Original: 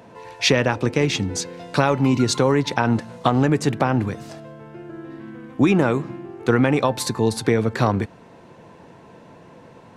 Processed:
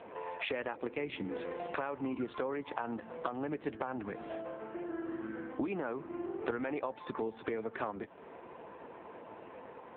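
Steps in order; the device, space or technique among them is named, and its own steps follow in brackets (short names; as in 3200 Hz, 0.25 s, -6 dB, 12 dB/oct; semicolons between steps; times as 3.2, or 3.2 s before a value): voicemail (BPF 320–2700 Hz; compressor 10:1, threshold -33 dBFS, peak gain reduction 19.5 dB; gain +1 dB; AMR-NB 5.9 kbps 8000 Hz)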